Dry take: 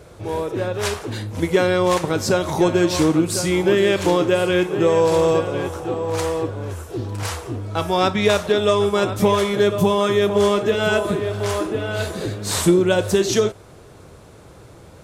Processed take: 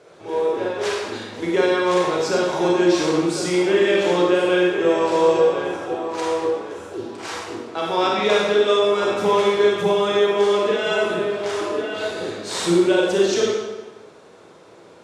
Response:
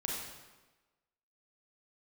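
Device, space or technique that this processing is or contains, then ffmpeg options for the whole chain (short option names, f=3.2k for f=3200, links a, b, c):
supermarket ceiling speaker: -filter_complex "[0:a]highpass=310,lowpass=6.4k[a];[1:a]atrim=start_sample=2205[b];[a][b]afir=irnorm=-1:irlink=0,volume=-2.5dB"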